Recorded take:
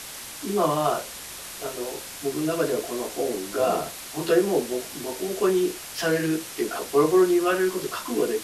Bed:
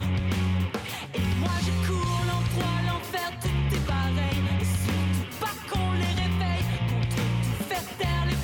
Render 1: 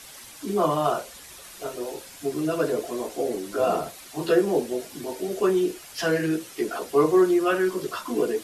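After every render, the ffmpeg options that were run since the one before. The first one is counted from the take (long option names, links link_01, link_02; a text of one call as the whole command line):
ffmpeg -i in.wav -af "afftdn=noise_reduction=9:noise_floor=-39" out.wav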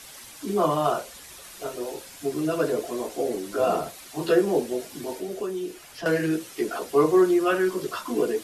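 ffmpeg -i in.wav -filter_complex "[0:a]asettb=1/sr,asplit=3[link_01][link_02][link_03];[link_01]atrim=end=5.184[link_04];[link_02]atrim=start=5.18:end=6.06,asetpts=PTS-STARTPTS,afade=type=in:duration=0.004:curve=qsin,afade=type=out:start_time=0.876:duration=0.004:curve=qsin,acrossover=split=690|3200[link_05][link_06][link_07];[link_05]acompressor=threshold=-30dB:ratio=4[link_08];[link_06]acompressor=threshold=-45dB:ratio=4[link_09];[link_07]acompressor=threshold=-48dB:ratio=4[link_10];[link_08][link_09][link_10]amix=inputs=3:normalize=0[link_11];[link_03]atrim=start=6.056[link_12];[link_04][link_11]acrossfade=duration=0.004:curve1=hsin:curve2=qsin[link_13];[link_13][link_12]acrossfade=duration=0.004:curve1=qsin:curve2=hsin" out.wav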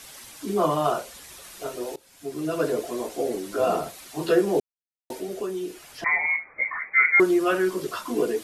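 ffmpeg -i in.wav -filter_complex "[0:a]asettb=1/sr,asplit=3[link_01][link_02][link_03];[link_01]atrim=end=6.044[link_04];[link_02]atrim=start=6.04:end=7.2,asetpts=PTS-STARTPTS,afade=type=in:duration=0.004:curve=qsin,afade=type=out:start_time=1.156:duration=0.004:curve=qsin,lowpass=frequency=2100:width_type=q:width=0.5098,lowpass=frequency=2100:width_type=q:width=0.6013,lowpass=frequency=2100:width_type=q:width=0.9,lowpass=frequency=2100:width_type=q:width=2.563,afreqshift=-2500[link_05];[link_03]atrim=start=7.196[link_06];[link_04][link_05]acrossfade=duration=0.004:curve1=hsin:curve2=qsin[link_07];[link_07][link_06]acrossfade=duration=0.004:curve1=qsin:curve2=hsin,asplit=4[link_08][link_09][link_10][link_11];[link_08]atrim=end=1.96,asetpts=PTS-STARTPTS,afade=type=out:start_time=1.956:duration=0.004:curve=hsin:silence=0.1[link_12];[link_09]atrim=start=1.96:end=4.6,asetpts=PTS-STARTPTS,afade=type=in:duration=0.69:silence=0.1,afade=type=out:start_time=2.636:duration=0.004:curve=hsin[link_13];[link_10]atrim=start=4.6:end=5.1,asetpts=PTS-STARTPTS,volume=0[link_14];[link_11]atrim=start=5.1,asetpts=PTS-STARTPTS,afade=type=in:duration=0.004:curve=hsin[link_15];[link_12][link_13][link_14][link_15]concat=n=4:v=0:a=1" out.wav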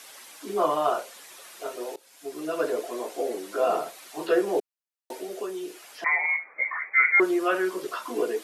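ffmpeg -i in.wav -filter_complex "[0:a]highpass=390,acrossover=split=3000[link_01][link_02];[link_02]acompressor=threshold=-44dB:ratio=4:attack=1:release=60[link_03];[link_01][link_03]amix=inputs=2:normalize=0" out.wav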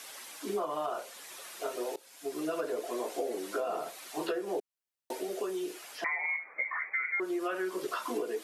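ffmpeg -i in.wav -af "alimiter=limit=-17.5dB:level=0:latency=1:release=468,acompressor=threshold=-30dB:ratio=6" out.wav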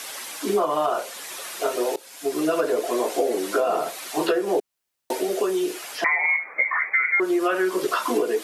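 ffmpeg -i in.wav -af "volume=11.5dB" out.wav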